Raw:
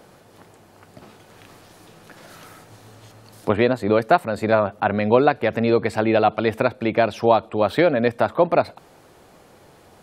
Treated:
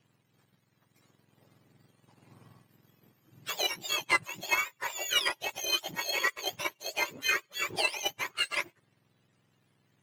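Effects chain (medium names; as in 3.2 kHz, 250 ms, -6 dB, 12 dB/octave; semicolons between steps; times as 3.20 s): spectrum inverted on a logarithmic axis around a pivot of 1.2 kHz; power-law waveshaper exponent 1.4; trim -4 dB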